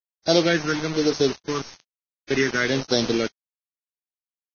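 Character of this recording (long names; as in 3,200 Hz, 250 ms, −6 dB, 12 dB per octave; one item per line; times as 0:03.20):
a buzz of ramps at a fixed pitch in blocks of 8 samples
phaser sweep stages 4, 1.1 Hz, lowest notch 650–2,000 Hz
a quantiser's noise floor 6 bits, dither none
Ogg Vorbis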